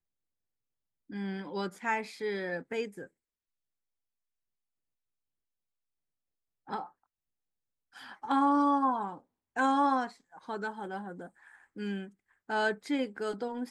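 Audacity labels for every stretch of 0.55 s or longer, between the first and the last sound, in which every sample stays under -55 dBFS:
3.070000	6.670000	silence
6.910000	7.930000	silence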